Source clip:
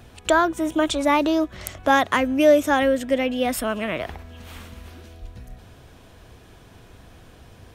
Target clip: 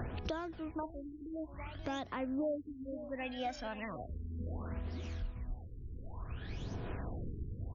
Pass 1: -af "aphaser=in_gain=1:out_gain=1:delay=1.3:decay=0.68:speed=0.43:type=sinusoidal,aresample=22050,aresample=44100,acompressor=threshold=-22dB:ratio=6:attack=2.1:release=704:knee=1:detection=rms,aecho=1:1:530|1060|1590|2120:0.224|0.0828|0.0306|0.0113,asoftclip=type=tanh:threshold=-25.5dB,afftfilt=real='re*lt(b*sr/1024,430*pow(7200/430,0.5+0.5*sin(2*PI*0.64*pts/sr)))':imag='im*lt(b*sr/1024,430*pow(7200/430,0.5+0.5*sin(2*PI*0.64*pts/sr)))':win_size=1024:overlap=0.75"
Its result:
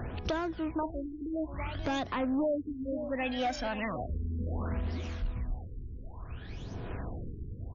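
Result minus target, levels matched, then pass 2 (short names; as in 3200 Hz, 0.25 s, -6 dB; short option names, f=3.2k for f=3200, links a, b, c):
compressor: peak gain reduction -9.5 dB
-af "aphaser=in_gain=1:out_gain=1:delay=1.3:decay=0.68:speed=0.43:type=sinusoidal,aresample=22050,aresample=44100,acompressor=threshold=-33.5dB:ratio=6:attack=2.1:release=704:knee=1:detection=rms,aecho=1:1:530|1060|1590|2120:0.224|0.0828|0.0306|0.0113,asoftclip=type=tanh:threshold=-25.5dB,afftfilt=real='re*lt(b*sr/1024,430*pow(7200/430,0.5+0.5*sin(2*PI*0.64*pts/sr)))':imag='im*lt(b*sr/1024,430*pow(7200/430,0.5+0.5*sin(2*PI*0.64*pts/sr)))':win_size=1024:overlap=0.75"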